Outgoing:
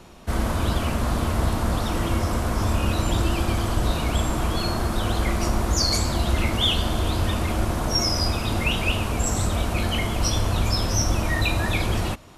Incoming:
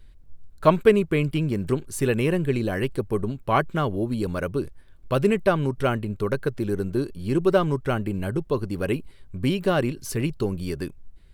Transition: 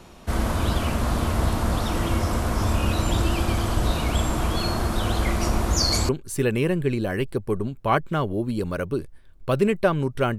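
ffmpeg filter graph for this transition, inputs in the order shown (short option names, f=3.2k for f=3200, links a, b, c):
-filter_complex "[1:a]asplit=2[a][b];[0:a]apad=whole_dur=10.38,atrim=end=10.38,atrim=end=6.092[c];[b]atrim=start=1.718:end=6.01[d];[a]atrim=start=1.14:end=1.72,asetpts=PTS-STARTPTS,volume=-17dB,afade=t=in:d=0.004:c=hsin,afade=t=out:st=0.576:d=0.004:c=hsin,adelay=5510[e];[c][d]acrossfade=d=0.004:c1=hsin:c2=hsin[f];[f][e]amix=inputs=2:normalize=0"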